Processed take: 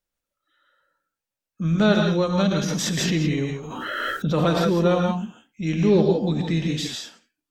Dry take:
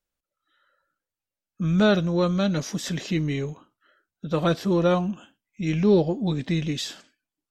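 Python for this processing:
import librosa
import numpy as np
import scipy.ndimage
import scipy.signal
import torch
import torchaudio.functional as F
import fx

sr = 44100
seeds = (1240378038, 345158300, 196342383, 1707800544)

y = fx.rev_gated(x, sr, seeds[0], gate_ms=190, shape='rising', drr_db=1.5)
y = fx.pre_swell(y, sr, db_per_s=21.0, at=(2.38, 4.7))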